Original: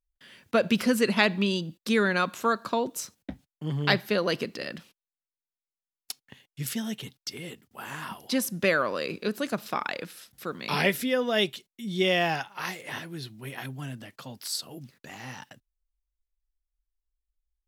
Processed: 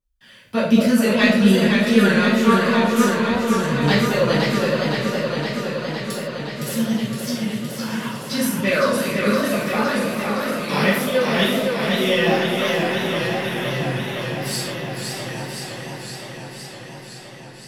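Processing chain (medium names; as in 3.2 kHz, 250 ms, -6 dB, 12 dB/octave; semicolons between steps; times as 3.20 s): in parallel at -10 dB: saturation -18 dBFS, distortion -14 dB; on the sum: delay with an opening low-pass 211 ms, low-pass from 750 Hz, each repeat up 2 oct, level -6 dB; phaser 1.3 Hz, delay 2 ms, feedback 42%; gated-style reverb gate 180 ms falling, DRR -7 dB; modulated delay 514 ms, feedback 75%, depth 113 cents, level -4.5 dB; trim -6 dB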